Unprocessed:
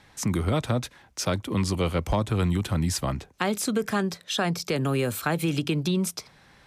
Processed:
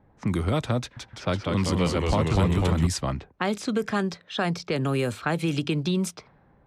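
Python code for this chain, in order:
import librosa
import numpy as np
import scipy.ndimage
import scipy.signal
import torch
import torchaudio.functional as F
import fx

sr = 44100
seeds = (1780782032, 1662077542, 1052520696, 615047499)

y = fx.env_lowpass(x, sr, base_hz=640.0, full_db=-20.0)
y = fx.echo_pitch(y, sr, ms=166, semitones=-1, count=3, db_per_echo=-3.0, at=(0.8, 2.87))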